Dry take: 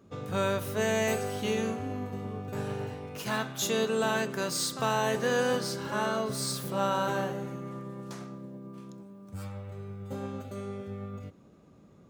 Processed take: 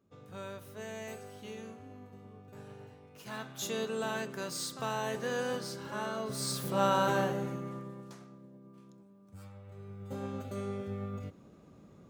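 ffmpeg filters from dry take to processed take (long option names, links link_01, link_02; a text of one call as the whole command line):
ffmpeg -i in.wav -af "volume=12dB,afade=type=in:start_time=3.13:duration=0.51:silence=0.398107,afade=type=in:start_time=6.16:duration=0.7:silence=0.398107,afade=type=out:start_time=7.46:duration=0.73:silence=0.266073,afade=type=in:start_time=9.6:duration=1:silence=0.281838" out.wav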